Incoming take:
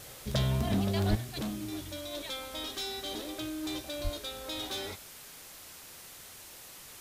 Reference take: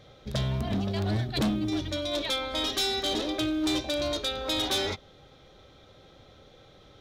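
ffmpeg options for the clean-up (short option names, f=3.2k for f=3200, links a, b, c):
-filter_complex "[0:a]asplit=3[a][b][c];[a]afade=t=out:st=1.09:d=0.02[d];[b]highpass=f=140:w=0.5412,highpass=f=140:w=1.3066,afade=t=in:st=1.09:d=0.02,afade=t=out:st=1.21:d=0.02[e];[c]afade=t=in:st=1.21:d=0.02[f];[d][e][f]amix=inputs=3:normalize=0,asplit=3[g][h][i];[g]afade=t=out:st=4.03:d=0.02[j];[h]highpass=f=140:w=0.5412,highpass=f=140:w=1.3066,afade=t=in:st=4.03:d=0.02,afade=t=out:st=4.15:d=0.02[k];[i]afade=t=in:st=4.15:d=0.02[l];[j][k][l]amix=inputs=3:normalize=0,afwtdn=0.004,asetnsamples=n=441:p=0,asendcmd='1.15 volume volume 9.5dB',volume=0dB"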